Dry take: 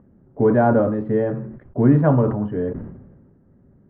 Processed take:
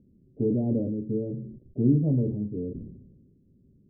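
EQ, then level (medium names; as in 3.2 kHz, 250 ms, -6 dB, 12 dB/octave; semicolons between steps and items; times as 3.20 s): inverse Chebyshev low-pass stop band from 1.4 kHz, stop band 60 dB; -6.5 dB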